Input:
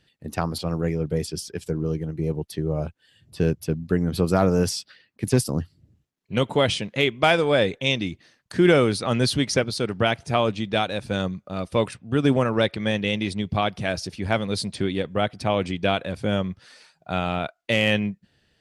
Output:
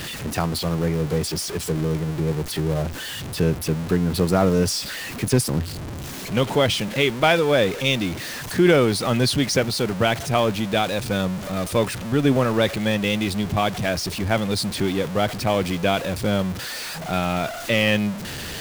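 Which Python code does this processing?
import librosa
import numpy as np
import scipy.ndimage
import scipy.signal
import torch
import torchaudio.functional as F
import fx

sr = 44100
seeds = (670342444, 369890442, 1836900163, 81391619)

y = x + 0.5 * 10.0 ** (-26.0 / 20.0) * np.sign(x)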